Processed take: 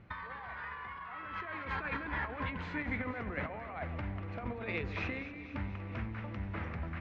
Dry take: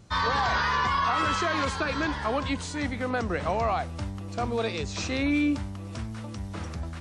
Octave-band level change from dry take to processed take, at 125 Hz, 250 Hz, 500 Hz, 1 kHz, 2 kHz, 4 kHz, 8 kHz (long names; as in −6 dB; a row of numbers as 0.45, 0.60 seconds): −7.0 dB, −12.0 dB, −13.0 dB, −14.5 dB, −9.0 dB, −19.0 dB, below −30 dB